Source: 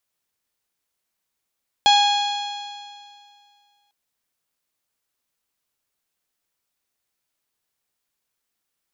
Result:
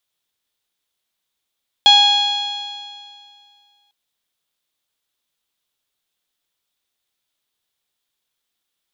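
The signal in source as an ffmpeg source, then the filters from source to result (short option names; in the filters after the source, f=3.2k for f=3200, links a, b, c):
-f lavfi -i "aevalsrc='0.237*pow(10,-3*t/2.22)*sin(2*PI*818.9*t)+0.0422*pow(10,-3*t/2.22)*sin(2*PI*1643.18*t)+0.0562*pow(10,-3*t/2.22)*sin(2*PI*2478.18*t)+0.168*pow(10,-3*t/2.22)*sin(2*PI*3329.09*t)+0.0841*pow(10,-3*t/2.22)*sin(2*PI*4200.97*t)+0.0299*pow(10,-3*t/2.22)*sin(2*PI*5098.65*t)+0.0266*pow(10,-3*t/2.22)*sin(2*PI*6026.73*t)+0.0282*pow(10,-3*t/2.22)*sin(2*PI*6989.53*t)':d=2.05:s=44100"
-af "equalizer=f=3.5k:w=2.7:g=9.5,bandreject=f=50:t=h:w=6,bandreject=f=100:t=h:w=6,bandreject=f=150:t=h:w=6,bandreject=f=200:t=h:w=6,bandreject=f=250:t=h:w=6"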